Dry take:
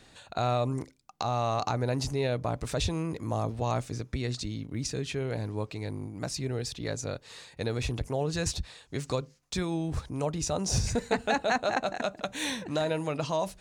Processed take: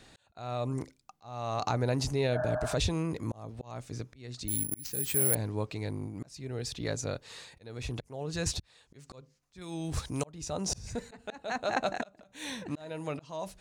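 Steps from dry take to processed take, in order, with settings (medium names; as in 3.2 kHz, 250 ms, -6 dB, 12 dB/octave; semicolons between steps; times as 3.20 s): 2.35–2.71 s: spectral replace 610–1800 Hz; slow attack 524 ms; 4.48–5.35 s: careless resampling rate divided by 4×, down none, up zero stuff; 9.61–10.25 s: treble shelf 2.5 kHz +11 dB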